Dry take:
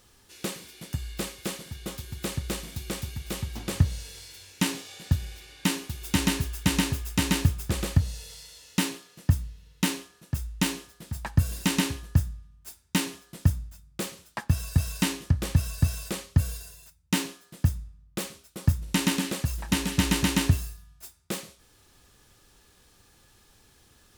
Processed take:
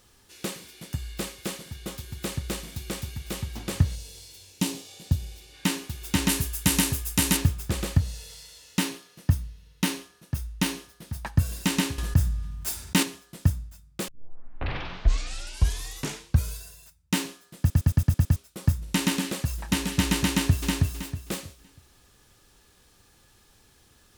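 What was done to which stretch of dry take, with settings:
3.95–5.54 bell 1600 Hz -10 dB 1.3 oct
6.29–7.37 bell 12000 Hz +10.5 dB 1.4 oct
8.83–11.35 notch 7500 Hz
11.98–13.03 fast leveller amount 50%
14.08 tape start 2.57 s
17.59 stutter in place 0.11 s, 7 plays
20.3–20.7 echo throw 0.32 s, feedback 30%, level -2 dB

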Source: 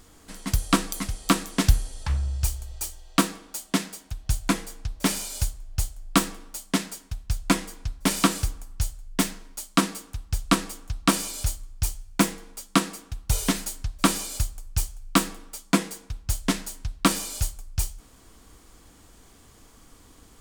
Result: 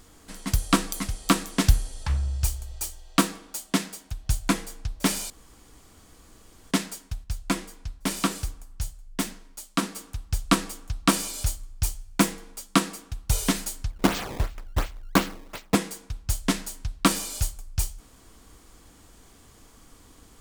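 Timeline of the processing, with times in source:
5.3–6.71 room tone
7.24–9.96 flange 1.8 Hz, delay 3.1 ms, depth 5.6 ms, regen -87%
13.9–15.75 decimation with a swept rate 18×, swing 160% 2.8 Hz

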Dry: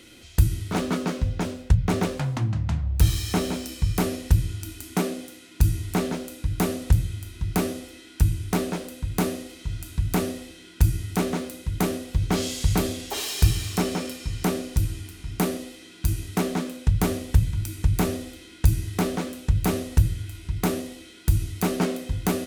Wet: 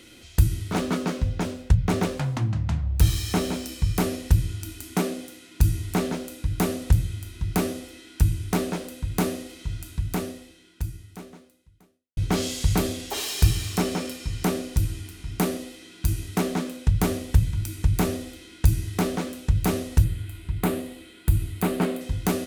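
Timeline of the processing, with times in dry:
9.65–12.17 fade out quadratic
20.04–22.01 bell 5800 Hz -11.5 dB 0.68 oct

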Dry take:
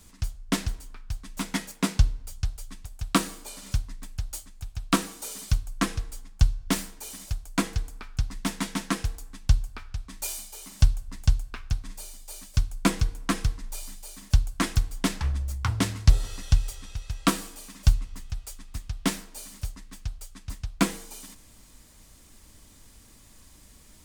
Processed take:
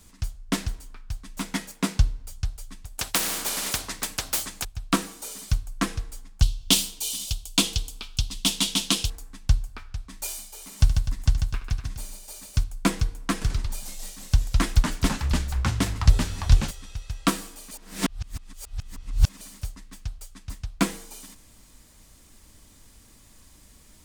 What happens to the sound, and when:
2.98–4.65 spectral compressor 4:1
6.42–9.1 resonant high shelf 2400 Hz +9.5 dB, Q 3
10.51–12.64 tapped delay 73/143/250 ms -12.5/-5.5/-11.5 dB
13.33–16.71 echoes that change speed 84 ms, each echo -2 st, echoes 2
17.71–19.41 reverse

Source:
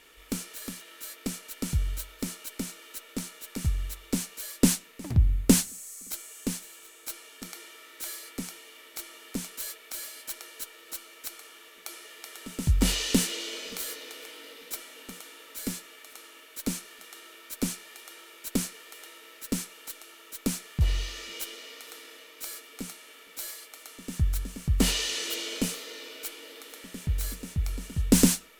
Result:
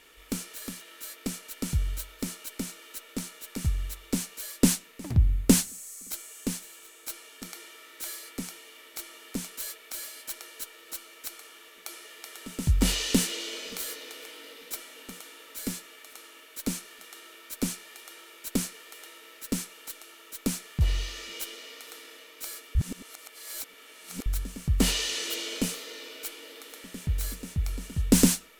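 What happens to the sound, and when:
22.75–24.26 reverse

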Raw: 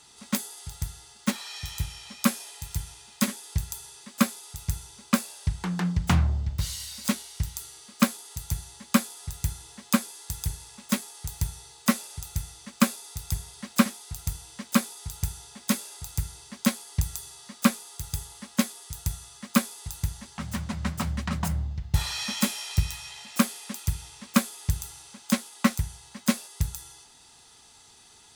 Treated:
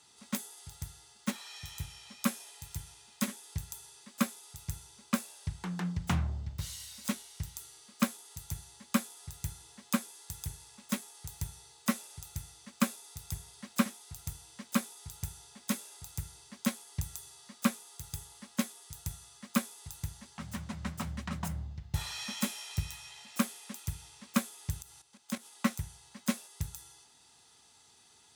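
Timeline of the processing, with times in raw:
24.82–25.45 level quantiser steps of 12 dB
whole clip: HPF 70 Hz; dynamic EQ 4600 Hz, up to -4 dB, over -51 dBFS, Q 6.1; gain -7.5 dB

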